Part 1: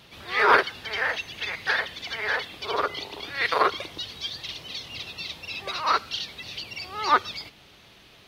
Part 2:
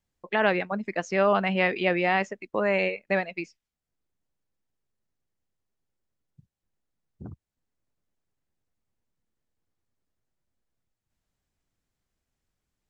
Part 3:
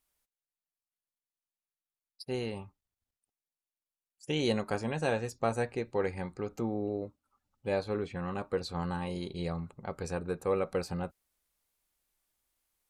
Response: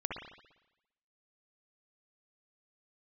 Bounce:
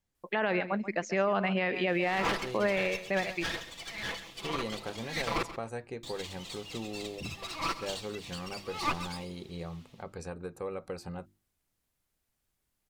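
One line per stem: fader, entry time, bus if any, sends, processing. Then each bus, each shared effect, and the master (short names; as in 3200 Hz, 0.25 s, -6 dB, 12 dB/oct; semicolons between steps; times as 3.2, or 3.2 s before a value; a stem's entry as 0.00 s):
-10.5 dB, 1.75 s, muted 5.43–6.03, no send, echo send -13.5 dB, minimum comb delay 6 ms; bell 1500 Hz -8.5 dB 0.25 oct; AGC gain up to 3.5 dB
-1.5 dB, 0.00 s, no send, echo send -16 dB, dry
-3.5 dB, 0.15 s, no send, no echo send, notches 50/100/150/200/250/300/350 Hz; compressor 2:1, threshold -33 dBFS, peak gain reduction 5.5 dB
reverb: off
echo: feedback echo 0.134 s, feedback 16%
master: limiter -18.5 dBFS, peak gain reduction 8 dB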